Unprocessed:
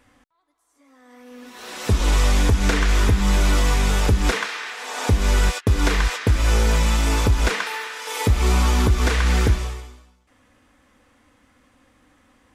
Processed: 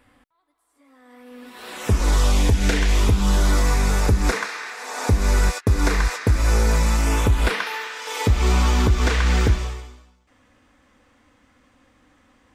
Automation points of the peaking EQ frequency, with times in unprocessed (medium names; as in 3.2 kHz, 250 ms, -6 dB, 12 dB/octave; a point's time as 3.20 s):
peaking EQ -10.5 dB 0.41 oct
1.70 s 6.2 kHz
2.63 s 1 kHz
3.63 s 3.1 kHz
6.93 s 3.1 kHz
7.91 s 11 kHz